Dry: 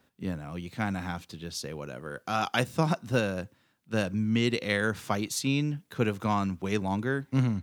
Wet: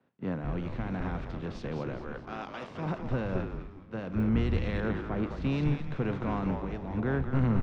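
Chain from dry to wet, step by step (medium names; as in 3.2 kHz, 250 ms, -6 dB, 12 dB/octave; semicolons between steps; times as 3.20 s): spectral levelling over time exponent 0.6; 1.97–2.71 s: high-pass 510 Hz 6 dB/octave; 4.80–5.42 s: treble shelf 3.3 kHz -11.5 dB; 6.54–6.97 s: compression 4:1, threshold -30 dBFS, peak gain reduction 9 dB; peak limiter -17.5 dBFS, peak gain reduction 10 dB; tape spacing loss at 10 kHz 38 dB; frequency-shifting echo 211 ms, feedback 58%, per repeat -140 Hz, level -4 dB; clicks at 4.20 s, -29 dBFS; three bands expanded up and down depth 100%; trim -2 dB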